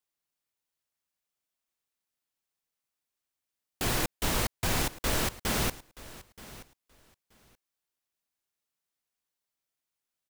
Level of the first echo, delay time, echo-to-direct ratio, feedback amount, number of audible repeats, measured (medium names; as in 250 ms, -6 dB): -18.5 dB, 927 ms, -18.5 dB, 17%, 2